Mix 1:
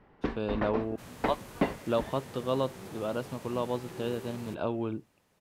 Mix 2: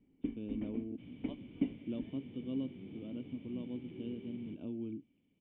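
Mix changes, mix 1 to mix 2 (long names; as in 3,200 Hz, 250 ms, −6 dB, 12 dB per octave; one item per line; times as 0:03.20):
second sound +6.0 dB
master: add formant resonators in series i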